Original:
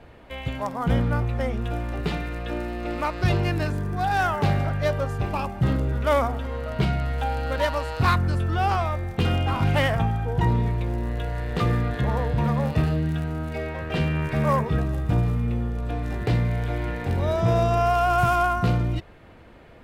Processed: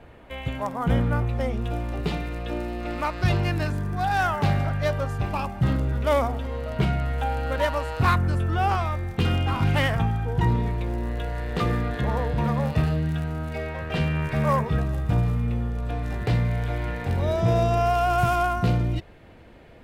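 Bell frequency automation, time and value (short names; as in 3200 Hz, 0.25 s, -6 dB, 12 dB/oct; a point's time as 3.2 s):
bell -4.5 dB 0.68 oct
4800 Hz
from 1.29 s 1600 Hz
from 2.81 s 420 Hz
from 5.97 s 1400 Hz
from 6.77 s 4500 Hz
from 8.75 s 620 Hz
from 10.55 s 110 Hz
from 12.58 s 330 Hz
from 17.22 s 1200 Hz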